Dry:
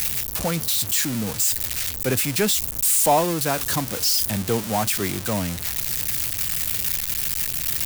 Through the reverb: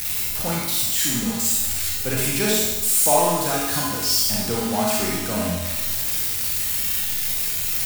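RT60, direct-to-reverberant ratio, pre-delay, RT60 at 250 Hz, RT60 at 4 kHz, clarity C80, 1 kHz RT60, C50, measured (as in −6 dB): 1.1 s, −4.5 dB, 30 ms, 1.1 s, 1.1 s, 2.0 dB, 1.1 s, −1.5 dB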